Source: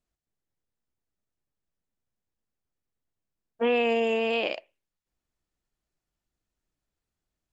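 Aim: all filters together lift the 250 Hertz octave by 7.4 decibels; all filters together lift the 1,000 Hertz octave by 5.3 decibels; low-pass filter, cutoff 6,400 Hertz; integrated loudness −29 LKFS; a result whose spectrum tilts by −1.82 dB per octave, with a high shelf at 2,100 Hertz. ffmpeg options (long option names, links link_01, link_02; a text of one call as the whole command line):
ffmpeg -i in.wav -af "lowpass=6400,equalizer=frequency=250:width_type=o:gain=7.5,equalizer=frequency=1000:width_type=o:gain=6.5,highshelf=frequency=2100:gain=4.5,volume=-7dB" out.wav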